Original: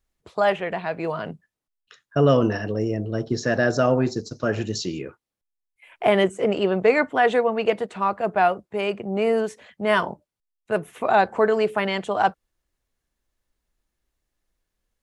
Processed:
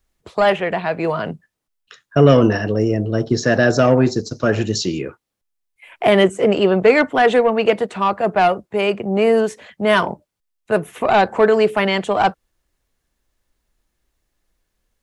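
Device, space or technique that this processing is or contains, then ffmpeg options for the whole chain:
one-band saturation: -filter_complex "[0:a]acrossover=split=420|2200[s0][s1][s2];[s1]asoftclip=type=tanh:threshold=0.133[s3];[s0][s3][s2]amix=inputs=3:normalize=0,volume=2.24"

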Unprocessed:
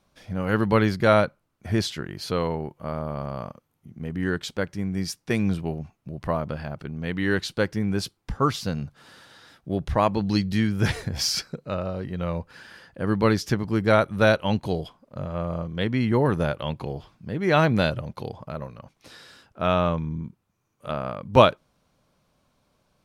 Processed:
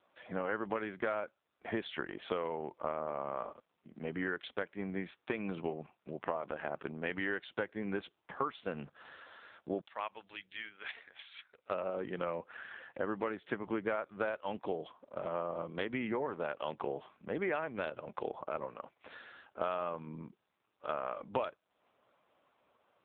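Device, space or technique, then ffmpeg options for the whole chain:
voicemail: -filter_complex "[0:a]asettb=1/sr,asplit=3[s0][s1][s2];[s0]atrim=end=9.814[s3];[s1]atrim=start=9.81:end=11.7,asetpts=PTS-STARTPTS,afade=t=in:d=0.004:c=qsin,afade=t=out:st=1.886:d=0.004:c=qsin,aderivative[s4];[s2]atrim=start=11.696[s5];[s3][s4]acrossfade=d=0.004:c1=hsin:c2=qsin[s6];[s6][s5]acrossfade=d=0.004:c1=qsin:c2=hsin,highpass=400,lowpass=3200,acompressor=threshold=0.02:ratio=10,volume=1.41" -ar 8000 -c:a libopencore_amrnb -b:a 5900

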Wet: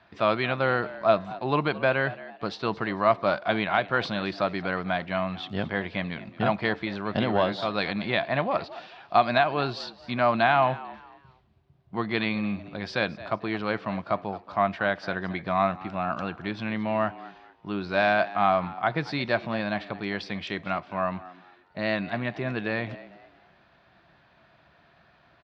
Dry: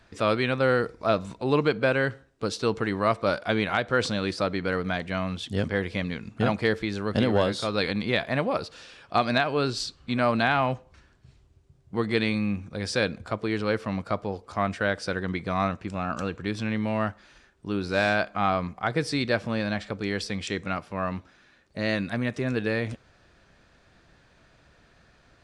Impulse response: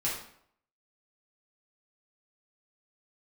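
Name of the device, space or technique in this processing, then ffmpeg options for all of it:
frequency-shifting delay pedal into a guitar cabinet: -filter_complex "[0:a]asplit=4[s0][s1][s2][s3];[s1]adelay=223,afreqshift=86,volume=0.126[s4];[s2]adelay=446,afreqshift=172,volume=0.0389[s5];[s3]adelay=669,afreqshift=258,volume=0.0122[s6];[s0][s4][s5][s6]amix=inputs=4:normalize=0,highpass=96,equalizer=f=100:t=q:w=4:g=-5,equalizer=f=260:t=q:w=4:g=-5,equalizer=f=470:t=q:w=4:g=-8,equalizer=f=690:t=q:w=4:g=6,equalizer=f=1000:t=q:w=4:g=4,lowpass=f=4100:w=0.5412,lowpass=f=4100:w=1.3066"

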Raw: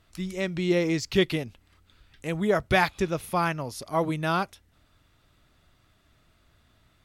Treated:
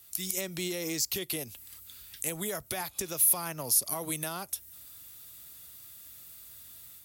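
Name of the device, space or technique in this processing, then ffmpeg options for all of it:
FM broadcast chain: -filter_complex "[0:a]highpass=50,dynaudnorm=f=120:g=3:m=1.88,acrossover=split=130|300|1100[s0][s1][s2][s3];[s0]acompressor=threshold=0.00891:ratio=4[s4];[s1]acompressor=threshold=0.0126:ratio=4[s5];[s2]acompressor=threshold=0.0631:ratio=4[s6];[s3]acompressor=threshold=0.0141:ratio=4[s7];[s4][s5][s6][s7]amix=inputs=4:normalize=0,aemphasis=mode=production:type=75fm,alimiter=limit=0.0891:level=0:latency=1:release=120,asoftclip=type=hard:threshold=0.075,lowpass=f=15000:w=0.5412,lowpass=f=15000:w=1.3066,aemphasis=mode=production:type=75fm,volume=0.501"

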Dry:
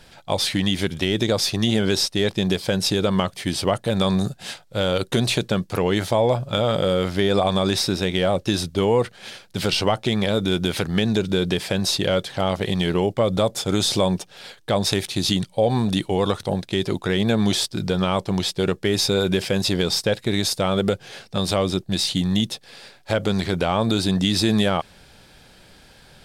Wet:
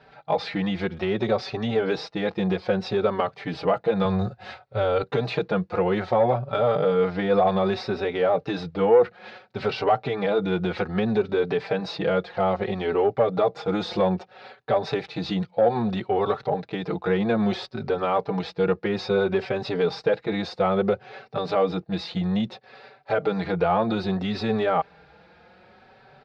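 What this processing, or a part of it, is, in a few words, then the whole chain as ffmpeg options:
barber-pole flanger into a guitar amplifier: -filter_complex "[0:a]asplit=2[s0][s1];[s1]adelay=4.7,afreqshift=0.61[s2];[s0][s2]amix=inputs=2:normalize=1,asoftclip=type=tanh:threshold=0.211,highpass=82,equalizer=f=100:t=q:w=4:g=-7,equalizer=f=280:t=q:w=4:g=-5,equalizer=f=460:t=q:w=4:g=7,equalizer=f=770:t=q:w=4:g=8,equalizer=f=1300:t=q:w=4:g=5,equalizer=f=3200:t=q:w=4:g=-10,lowpass=f=3600:w=0.5412,lowpass=f=3600:w=1.3066,asettb=1/sr,asplit=3[s3][s4][s5];[s3]atrim=end=4.054[s6];[s4]atrim=start=4.05:end=5.03,asetpts=PTS-STARTPTS,afade=t=in:d=0.004:c=qsin,afade=t=out:st=0.976:d=0.004:c=qsin,lowshelf=f=120:t=q:w=1.5:g=10[s7];[s5]atrim=start=5.026[s8];[s6][s7]acrossfade=d=0.004:c1=hsin:c2=qsin[s9];[s9][s8]acrossfade=d=0.004:c1=qsin:c2=hsin"

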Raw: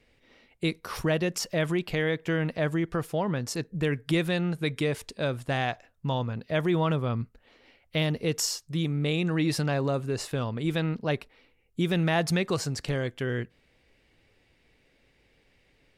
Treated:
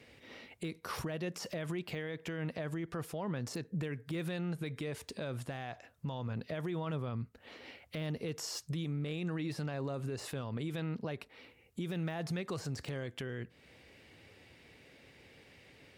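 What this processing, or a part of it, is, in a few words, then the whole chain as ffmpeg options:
podcast mastering chain: -af "highpass=f=69:w=0.5412,highpass=f=69:w=1.3066,deesser=0.95,acompressor=threshold=0.00794:ratio=2.5,alimiter=level_in=4.47:limit=0.0631:level=0:latency=1:release=66,volume=0.224,volume=2.37" -ar 48000 -c:a libmp3lame -b:a 112k

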